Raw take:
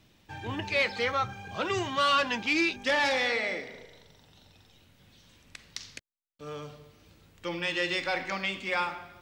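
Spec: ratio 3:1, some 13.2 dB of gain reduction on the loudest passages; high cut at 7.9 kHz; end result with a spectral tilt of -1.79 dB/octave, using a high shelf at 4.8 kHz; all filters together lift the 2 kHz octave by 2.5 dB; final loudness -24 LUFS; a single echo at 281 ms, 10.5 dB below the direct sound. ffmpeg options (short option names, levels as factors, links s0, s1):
-af "lowpass=7900,equalizer=f=2000:t=o:g=4,highshelf=f=4800:g=-5.5,acompressor=threshold=0.0112:ratio=3,aecho=1:1:281:0.299,volume=5.31"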